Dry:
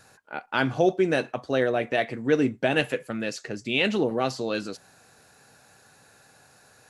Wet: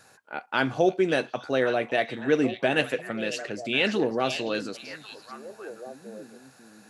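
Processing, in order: low shelf 96 Hz -11.5 dB; delay with a stepping band-pass 0.549 s, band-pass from 3700 Hz, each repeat -1.4 oct, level -6 dB

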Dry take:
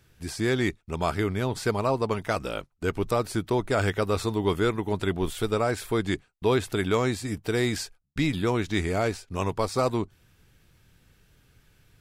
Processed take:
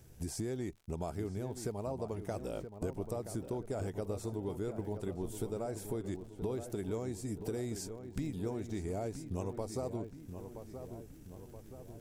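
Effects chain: band shelf 2200 Hz -12 dB 2.4 oct; compressor 6:1, threshold -40 dBFS, peak gain reduction 19 dB; crackle 91/s -56 dBFS; on a send: darkening echo 0.975 s, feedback 55%, low-pass 2100 Hz, level -9 dB; on the sum: gain +3.5 dB

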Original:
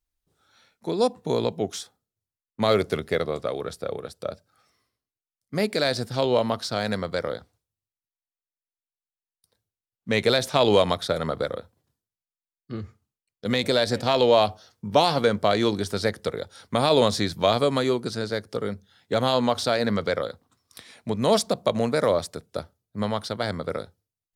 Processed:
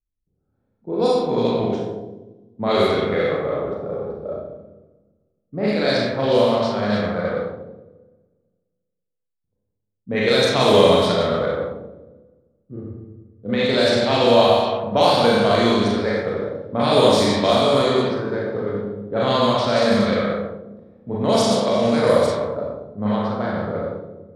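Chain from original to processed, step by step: Schroeder reverb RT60 1.7 s, combs from 30 ms, DRR -6 dB; low-pass opened by the level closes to 310 Hz, open at -10 dBFS; gain -1.5 dB

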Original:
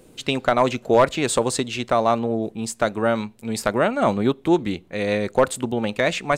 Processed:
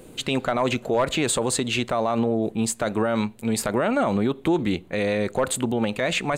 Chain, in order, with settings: bell 5400 Hz -7 dB 0.35 oct; limiter -18.5 dBFS, peak gain reduction 12 dB; gain +5 dB

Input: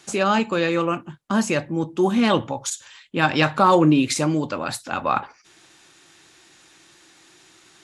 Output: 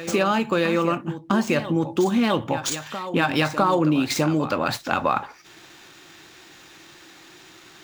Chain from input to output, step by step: median filter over 5 samples; compressor 4:1, threshold -25 dBFS, peak gain reduction 12 dB; reverse echo 0.655 s -12 dB; gain +6.5 dB

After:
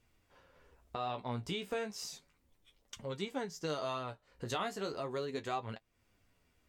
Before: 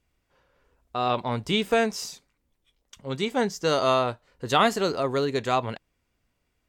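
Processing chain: compressor 2.5:1, threshold -45 dBFS, peak gain reduction 19 dB; flange 0.34 Hz, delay 8.4 ms, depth 8.9 ms, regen +34%; gain +5.5 dB

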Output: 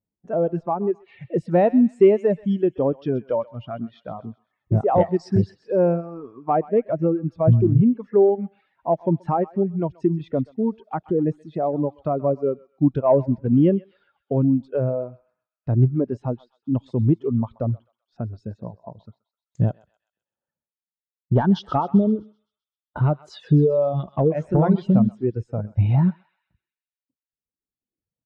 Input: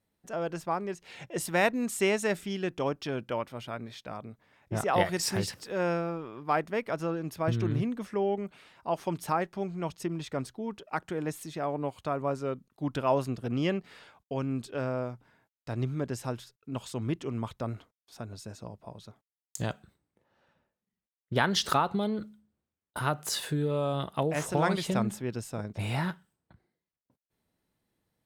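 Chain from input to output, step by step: reverb removal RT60 2 s; dynamic EQ 1600 Hz, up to -7 dB, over -45 dBFS, Q 0.85; in parallel at 0 dB: compressor, threshold -37 dBFS, peak gain reduction 14.5 dB; on the sum: sine folder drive 8 dB, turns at -8 dBFS; tape spacing loss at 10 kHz 28 dB; on a send: thinning echo 0.129 s, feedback 66%, high-pass 1200 Hz, level -10 dB; on the sum: spectral expander 1.5:1; gain +3.5 dB

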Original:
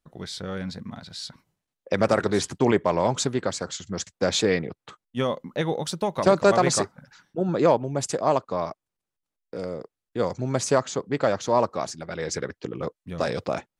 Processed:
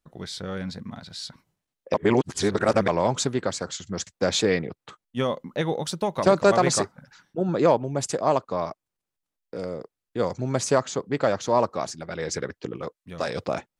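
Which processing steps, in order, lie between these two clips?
1.94–2.88 reverse; 12.76–13.36 low shelf 490 Hz -6 dB

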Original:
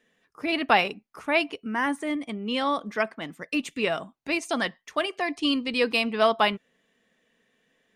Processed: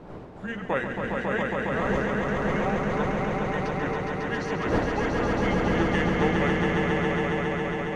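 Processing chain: delay-line pitch shifter -6.5 st; wind noise 490 Hz -32 dBFS; swelling echo 0.137 s, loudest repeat 5, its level -4 dB; gain -5.5 dB

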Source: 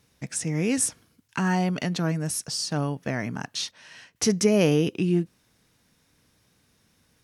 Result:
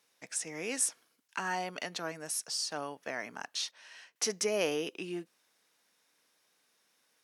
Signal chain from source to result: HPF 520 Hz 12 dB/oct; gain -5 dB

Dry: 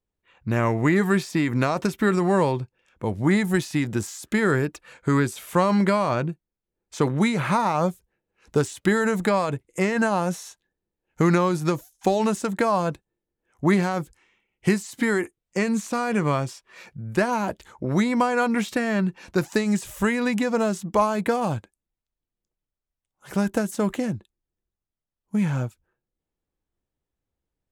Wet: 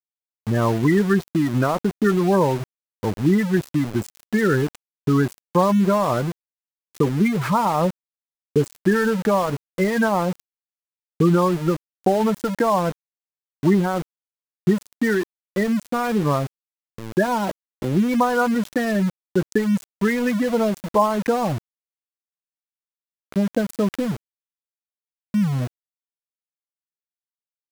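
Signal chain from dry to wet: spectral gate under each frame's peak -15 dB strong; sample gate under -30 dBFS; gain +3 dB

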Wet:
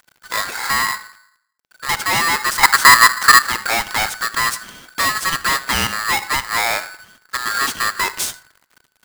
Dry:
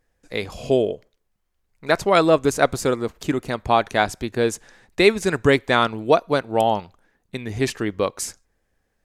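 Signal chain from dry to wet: in parallel at +3 dB: compressor, threshold -30 dBFS, peak gain reduction 19 dB; on the sum: soft clip -16 dBFS, distortion -8 dB; 2.63–3.43 resonant low shelf 730 Hz +9.5 dB, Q 1.5; companded quantiser 4-bit; digital reverb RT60 0.59 s, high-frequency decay 0.3×, pre-delay 20 ms, DRR 16.5 dB; polarity switched at an audio rate 1500 Hz; gain +3 dB

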